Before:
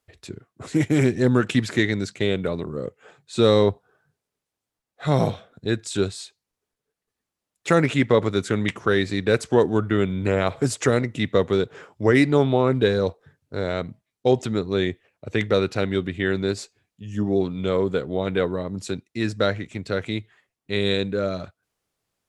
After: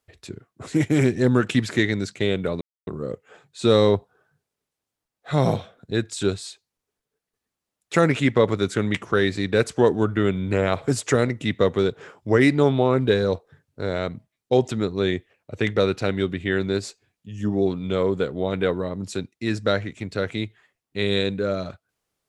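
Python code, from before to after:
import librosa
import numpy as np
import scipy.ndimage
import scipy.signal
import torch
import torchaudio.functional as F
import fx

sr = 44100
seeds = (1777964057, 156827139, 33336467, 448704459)

y = fx.edit(x, sr, fx.insert_silence(at_s=2.61, length_s=0.26), tone=tone)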